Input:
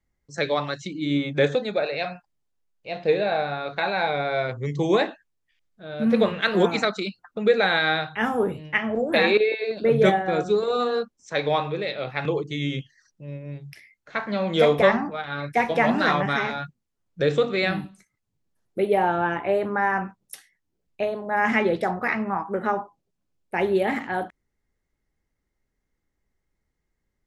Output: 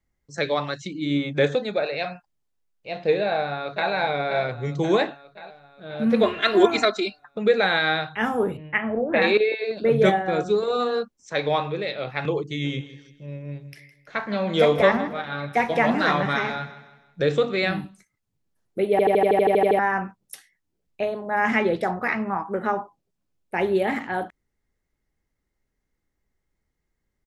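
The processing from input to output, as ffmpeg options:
ffmpeg -i in.wav -filter_complex "[0:a]asplit=2[link_01][link_02];[link_02]afade=type=in:start_time=3.23:duration=0.01,afade=type=out:start_time=3.91:duration=0.01,aecho=0:1:530|1060|1590|2120|2650|3180|3710:0.354813|0.212888|0.127733|0.0766397|0.0459838|0.0275903|0.0165542[link_03];[link_01][link_03]amix=inputs=2:normalize=0,asettb=1/sr,asplit=3[link_04][link_05][link_06];[link_04]atrim=end=6.234[link_07];[link_05]atrim=start=6.23:end=7.24,asetpts=PTS-STARTPTS,afade=type=in:duration=0.004:curve=qsin,afade=type=out:start_time=1.006:duration=0.004:curve=qsin,aecho=1:1:2.9:0.91,atrim=end_sample=44541[link_08];[link_06]atrim=start=7.236[link_09];[link_07][link_08]acrossfade=duration=0.004:curve1=hsin:curve2=qsin[link_10];[link_10][link_09]acrossfade=duration=0.004:curve1=qsin:curve2=hsin,asettb=1/sr,asplit=3[link_11][link_12][link_13];[link_11]atrim=end=8.574[link_14];[link_12]atrim=start=8.57:end=9.22,asetpts=PTS-STARTPTS,afade=type=in:duration=0.004:curve=qsin,afade=type=out:start_time=0.646:duration=0.004:curve=qsin,lowpass=frequency=2600:width=0.5412,lowpass=frequency=2600:width=1.3066[link_15];[link_13]atrim=start=9.216[link_16];[link_14][link_15]acrossfade=duration=0.004:curve1=hsin:curve2=qsin[link_17];[link_17][link_16]acrossfade=duration=0.004:curve1=qsin:curve2=hsin,asplit=3[link_18][link_19][link_20];[link_18]afade=type=out:start_time=12.63:duration=0.02[link_21];[link_19]aecho=1:1:161|322|483|644:0.178|0.0711|0.0285|0.0114,afade=type=in:start_time=12.63:duration=0.02,afade=type=out:start_time=17.32:duration=0.02[link_22];[link_20]afade=type=in:start_time=17.32:duration=0.02[link_23];[link_21][link_22][link_23]amix=inputs=3:normalize=0,asplit=12[link_24][link_25][link_26][link_27][link_28][link_29][link_30][link_31][link_32][link_33][link_34][link_35];[link_24]atrim=end=18.992[link_36];[link_25]atrim=start=18.908:end=18.992[link_37];[link_26]atrim=start=18.908:end=18.992[link_38];[link_27]atrim=start=18.908:end=18.992[link_39];[link_28]atrim=start=18.908:end=18.992[link_40];[link_29]atrim=start=18.908:end=18.992[link_41];[link_30]atrim=start=18.908:end=18.992[link_42];[link_31]atrim=start=18.908:end=18.992[link_43];[link_32]atrim=start=18.908:end=18.992[link_44];[link_33]atrim=start=18.908:end=18.992[link_45];[link_34]atrim=start=18.908:end=18.992[link_46];[link_35]atrim=start=19.788[link_47];[link_36][link_37]acrossfade=duration=0.004:curve1=hsin:curve2=hsin[link_48];[link_48][link_38]acrossfade=duration=0.004:curve1=hsin:curve2=hsin[link_49];[link_49][link_39]acrossfade=duration=0.004:curve1=hsin:curve2=hsin[link_50];[link_50][link_40]acrossfade=duration=0.004:curve1=hsin:curve2=hsin[link_51];[link_51][link_41]acrossfade=duration=0.004:curve1=hsin:curve2=hsin[link_52];[link_52][link_42]acrossfade=duration=0.004:curve1=hsin:curve2=hsin[link_53];[link_53][link_43]acrossfade=duration=0.004:curve1=hsin:curve2=hsin[link_54];[link_54][link_44]acrossfade=duration=0.004:curve1=hsin:curve2=hsin[link_55];[link_55][link_45]acrossfade=duration=0.004:curve1=hsin:curve2=hsin[link_56];[link_56][link_46]acrossfade=duration=0.004:curve1=hsin:curve2=hsin[link_57];[link_57][link_47]acrossfade=duration=0.004:curve1=hsin:curve2=hsin" out.wav

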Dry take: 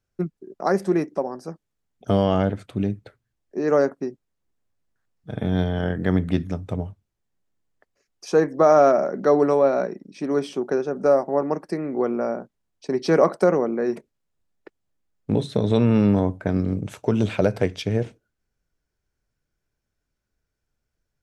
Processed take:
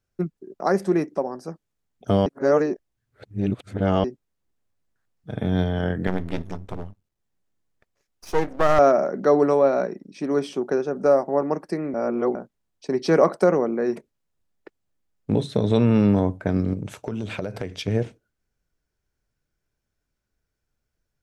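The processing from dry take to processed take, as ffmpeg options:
ffmpeg -i in.wav -filter_complex "[0:a]asettb=1/sr,asplit=3[link_01][link_02][link_03];[link_01]atrim=end=6.074[link_04];[link_02]atrim=start=6.07:end=8.79,asetpts=PTS-STARTPTS,afade=type=in:duration=0.004:curve=qsin,afade=type=out:start_time=2.716:duration=0.004:curve=qsin,aeval=exprs='max(val(0),0)':channel_layout=same[link_05];[link_03]atrim=start=8.786[link_06];[link_04][link_05]acrossfade=duration=0.004:curve1=hsin:curve2=qsin[link_07];[link_07][link_06]acrossfade=duration=0.004:curve1=qsin:curve2=hsin,asettb=1/sr,asplit=3[link_08][link_09][link_10];[link_08]atrim=end=16.734[link_11];[link_09]atrim=start=16.73:end=17.88,asetpts=PTS-STARTPTS,afade=type=in:duration=0.004:curve=qsin,afade=type=out:start_time=1.146:duration=0.004:curve=qsin,acompressor=threshold=-25dB:ratio=6:attack=3.2:release=140:knee=1:detection=peak[link_12];[link_10]atrim=start=17.876[link_13];[link_11][link_12]acrossfade=duration=0.004:curve1=hsin:curve2=qsin[link_14];[link_14][link_13]acrossfade=duration=0.004:curve1=qsin:curve2=hsin,asplit=5[link_15][link_16][link_17][link_18][link_19];[link_15]atrim=end=2.262[link_20];[link_16]atrim=start=2.258:end=4.042,asetpts=PTS-STARTPTS,areverse[link_21];[link_17]atrim=start=4.038:end=11.942[link_22];[link_18]atrim=start=11.938:end=12.352,asetpts=PTS-STARTPTS,areverse[link_23];[link_19]atrim=start=12.348[link_24];[link_20][link_21]acrossfade=duration=0.004:curve1=hsin:curve2=hsin[link_25];[link_25][link_22]acrossfade=duration=0.004:curve1=hsin:curve2=hsin[link_26];[link_26][link_23]acrossfade=duration=0.004:curve1=hsin:curve2=hsin[link_27];[link_27][link_24]acrossfade=duration=0.004:curve1=hsin:curve2=hsin" out.wav

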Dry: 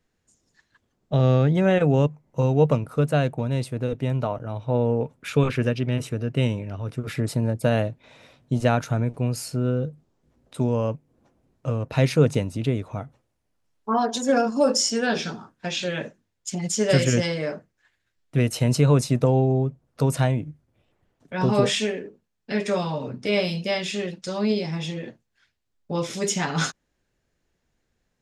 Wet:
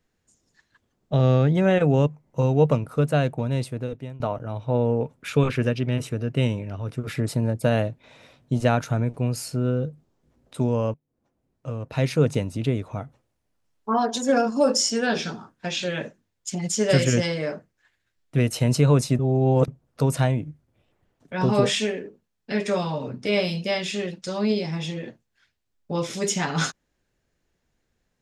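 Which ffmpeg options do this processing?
ffmpeg -i in.wav -filter_complex "[0:a]asplit=5[link_01][link_02][link_03][link_04][link_05];[link_01]atrim=end=4.2,asetpts=PTS-STARTPTS,afade=type=out:start_time=3.64:duration=0.56:silence=0.0944061[link_06];[link_02]atrim=start=4.2:end=10.94,asetpts=PTS-STARTPTS,afade=type=in:duration=0.004:curve=hsin:silence=0.0944061,afade=type=out:start_time=6.736:duration=0.004:curve=hsin:silence=0.112202[link_07];[link_03]atrim=start=10.94:end=19.192,asetpts=PTS-STARTPTS,afade=type=in:duration=1.65:silence=0.112202[link_08];[link_04]atrim=start=19.188:end=19.682,asetpts=PTS-STARTPTS,areverse[link_09];[link_05]atrim=start=19.678[link_10];[link_06][link_07][link_08]concat=n=3:v=0:a=1[link_11];[link_11][link_09]acrossfade=duration=0.004:curve1=hsin:curve2=hsin[link_12];[link_12][link_10]acrossfade=duration=0.004:curve1=hsin:curve2=hsin" out.wav

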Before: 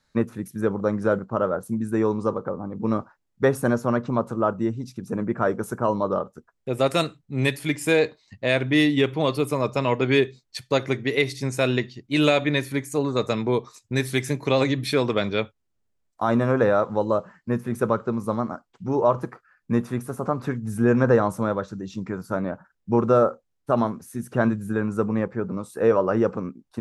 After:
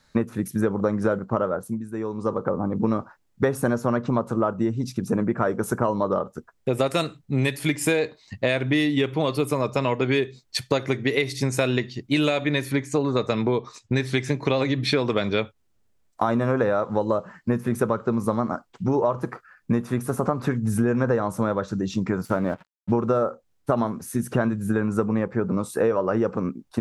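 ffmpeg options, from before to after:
ffmpeg -i in.wav -filter_complex "[0:a]asettb=1/sr,asplit=3[link_01][link_02][link_03];[link_01]atrim=end=12.714[link_04];[link_02]atrim=start=12.71:end=15.06,asetpts=PTS-STARTPTS,afade=type=in:duration=0.004:curve=qsin,afade=type=out:start_time=2.346:duration=0.004:curve=qsin,lowpass=5500[link_05];[link_03]atrim=start=15.056[link_06];[link_04][link_05]acrossfade=duration=0.004:curve1=hsin:curve2=qsin[link_07];[link_07][link_06]acrossfade=duration=0.004:curve1=qsin:curve2=hsin,asettb=1/sr,asplit=3[link_08][link_09][link_10];[link_08]atrim=end=22.254[link_11];[link_09]atrim=start=22.25:end=22.92,asetpts=PTS-STARTPTS,afade=type=in:duration=0.004:curve=qsin,afade=type=out:start_time=0.666:duration=0.004:curve=qsin,aeval=exprs='sgn(val(0))*max(abs(val(0))-0.00299,0)':channel_layout=same[link_12];[link_10]atrim=start=22.916[link_13];[link_11][link_12]acrossfade=duration=0.004:curve1=hsin:curve2=qsin[link_14];[link_14][link_13]acrossfade=duration=0.004:curve1=qsin:curve2=hsin,asplit=3[link_15][link_16][link_17];[link_15]atrim=end=1.83,asetpts=PTS-STARTPTS,afade=type=out:start_time=1.35:duration=0.48:silence=0.16788[link_18];[link_16]atrim=start=1.83:end=2.12,asetpts=PTS-STARTPTS,volume=-15.5dB[link_19];[link_17]atrim=start=2.12,asetpts=PTS-STARTPTS,afade=type=in:duration=0.48:silence=0.16788[link_20];[link_18][link_19][link_20]concat=n=3:v=0:a=1,acompressor=threshold=-27dB:ratio=6,volume=8dB" out.wav

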